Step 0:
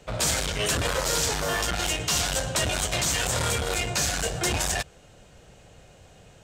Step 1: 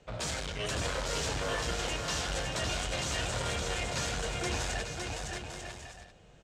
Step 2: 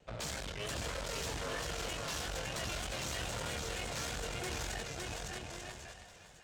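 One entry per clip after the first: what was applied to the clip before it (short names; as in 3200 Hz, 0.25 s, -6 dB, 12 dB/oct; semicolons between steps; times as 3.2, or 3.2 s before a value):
air absorption 63 m; bouncing-ball echo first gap 0.56 s, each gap 0.6×, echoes 5; gain -8 dB
tube stage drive 35 dB, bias 0.75; split-band echo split 480 Hz, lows 0.106 s, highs 0.55 s, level -13 dB; vibrato 3.2 Hz 51 cents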